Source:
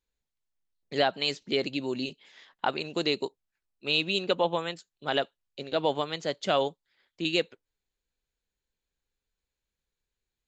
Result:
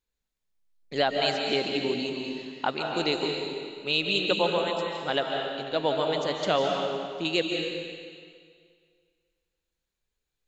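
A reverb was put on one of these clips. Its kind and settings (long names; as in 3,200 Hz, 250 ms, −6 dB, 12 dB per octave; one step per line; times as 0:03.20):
comb and all-pass reverb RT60 2 s, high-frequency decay 0.95×, pre-delay 110 ms, DRR 1 dB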